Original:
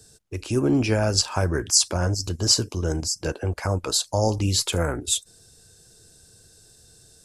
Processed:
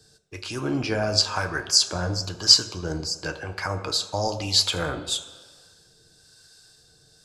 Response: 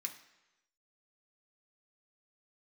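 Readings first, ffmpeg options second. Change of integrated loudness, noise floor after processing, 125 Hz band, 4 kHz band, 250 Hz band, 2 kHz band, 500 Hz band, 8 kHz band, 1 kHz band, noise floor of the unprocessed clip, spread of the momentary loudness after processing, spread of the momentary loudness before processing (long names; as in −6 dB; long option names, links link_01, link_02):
0.0 dB, −58 dBFS, −7.0 dB, +4.0 dB, −5.5 dB, +2.5 dB, −4.0 dB, −3.5 dB, 0.0 dB, −54 dBFS, 15 LU, 8 LU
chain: -filter_complex "[0:a]acrossover=split=750[link_01][link_02];[link_01]aeval=exprs='val(0)*(1-0.5/2+0.5/2*cos(2*PI*1*n/s))':channel_layout=same[link_03];[link_02]aeval=exprs='val(0)*(1-0.5/2-0.5/2*cos(2*PI*1*n/s))':channel_layout=same[link_04];[link_03][link_04]amix=inputs=2:normalize=0,asplit=2[link_05][link_06];[link_06]lowshelf=frequency=320:gain=-8[link_07];[1:a]atrim=start_sample=2205,asetrate=27342,aresample=44100,lowpass=6100[link_08];[link_07][link_08]afir=irnorm=-1:irlink=0,volume=2dB[link_09];[link_05][link_09]amix=inputs=2:normalize=0,volume=-2.5dB"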